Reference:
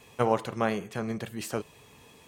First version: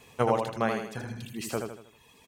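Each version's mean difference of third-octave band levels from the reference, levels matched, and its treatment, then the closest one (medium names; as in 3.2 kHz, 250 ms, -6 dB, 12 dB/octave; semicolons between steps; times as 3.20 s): 4.0 dB: spectral replace 1.00–1.28 s, 210–2300 Hz both; reverb removal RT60 1.2 s; on a send: feedback delay 79 ms, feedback 42%, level -5 dB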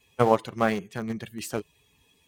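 8.0 dB: expander on every frequency bin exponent 1.5; in parallel at -8.5 dB: small samples zeroed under -29 dBFS; on the sum: loudspeaker Doppler distortion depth 0.12 ms; trim +3 dB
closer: first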